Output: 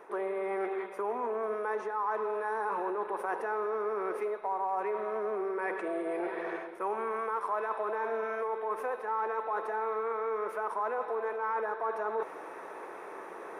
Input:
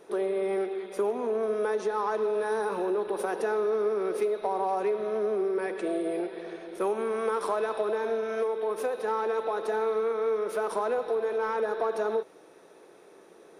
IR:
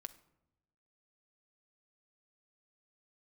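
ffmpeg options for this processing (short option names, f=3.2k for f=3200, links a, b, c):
-af "equalizer=f=125:t=o:w=1:g=-9,equalizer=f=1k:t=o:w=1:g=12,equalizer=f=2k:t=o:w=1:g=8,equalizer=f=4k:t=o:w=1:g=-9,equalizer=f=8k:t=o:w=1:g=-5,areverse,acompressor=threshold=-39dB:ratio=4,areverse,volume=5.5dB"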